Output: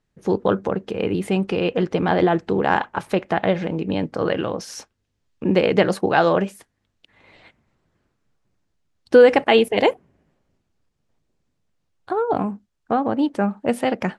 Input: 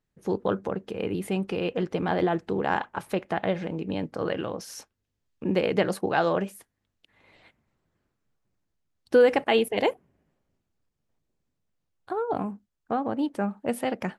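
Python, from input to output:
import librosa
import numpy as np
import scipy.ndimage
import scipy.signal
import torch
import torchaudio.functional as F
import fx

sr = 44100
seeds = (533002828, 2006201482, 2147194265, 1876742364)

y = scipy.signal.sosfilt(scipy.signal.butter(2, 8200.0, 'lowpass', fs=sr, output='sos'), x)
y = y * 10.0 ** (7.0 / 20.0)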